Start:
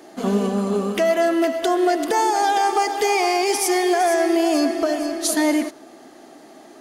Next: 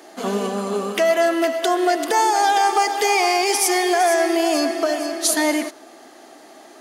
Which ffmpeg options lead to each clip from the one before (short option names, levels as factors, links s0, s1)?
-af "highpass=f=560:p=1,volume=1.5"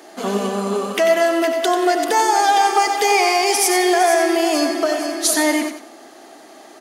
-af "aecho=1:1:91|182|273:0.376|0.109|0.0316,volume=1.19"